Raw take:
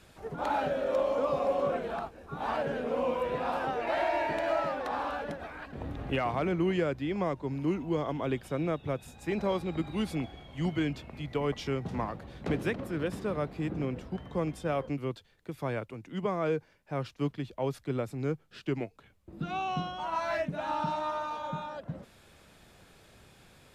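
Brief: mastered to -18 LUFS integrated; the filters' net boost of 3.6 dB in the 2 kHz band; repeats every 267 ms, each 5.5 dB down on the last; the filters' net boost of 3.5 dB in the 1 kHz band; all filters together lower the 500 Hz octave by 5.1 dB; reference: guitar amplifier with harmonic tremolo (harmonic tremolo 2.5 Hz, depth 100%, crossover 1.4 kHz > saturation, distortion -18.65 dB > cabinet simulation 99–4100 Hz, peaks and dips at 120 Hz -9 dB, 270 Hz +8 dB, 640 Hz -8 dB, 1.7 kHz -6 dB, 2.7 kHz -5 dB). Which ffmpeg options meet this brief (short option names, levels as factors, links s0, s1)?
-filter_complex "[0:a]equalizer=f=500:t=o:g=-5.5,equalizer=f=1000:t=o:g=6,equalizer=f=2000:t=o:g=8,aecho=1:1:267|534|801|1068|1335|1602|1869:0.531|0.281|0.149|0.079|0.0419|0.0222|0.0118,acrossover=split=1400[s0][s1];[s0]aeval=exprs='val(0)*(1-1/2+1/2*cos(2*PI*2.5*n/s))':c=same[s2];[s1]aeval=exprs='val(0)*(1-1/2-1/2*cos(2*PI*2.5*n/s))':c=same[s3];[s2][s3]amix=inputs=2:normalize=0,asoftclip=threshold=0.0631,highpass=99,equalizer=f=120:t=q:w=4:g=-9,equalizer=f=270:t=q:w=4:g=8,equalizer=f=640:t=q:w=4:g=-8,equalizer=f=1700:t=q:w=4:g=-6,equalizer=f=2700:t=q:w=4:g=-5,lowpass=f=4100:w=0.5412,lowpass=f=4100:w=1.3066,volume=8.91"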